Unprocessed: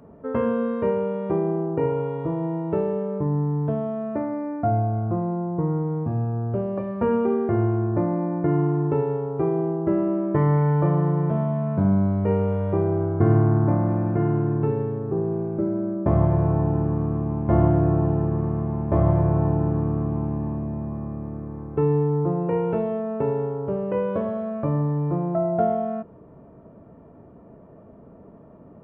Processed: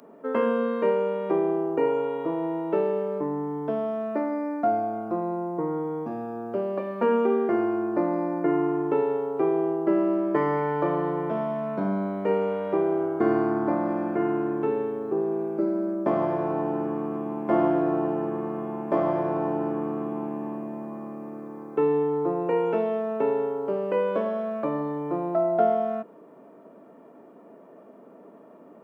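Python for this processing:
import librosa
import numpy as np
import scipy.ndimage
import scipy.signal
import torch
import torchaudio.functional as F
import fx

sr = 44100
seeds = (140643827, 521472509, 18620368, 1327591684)

y = scipy.signal.sosfilt(scipy.signal.butter(4, 240.0, 'highpass', fs=sr, output='sos'), x)
y = fx.high_shelf(y, sr, hz=2500.0, db=11.5)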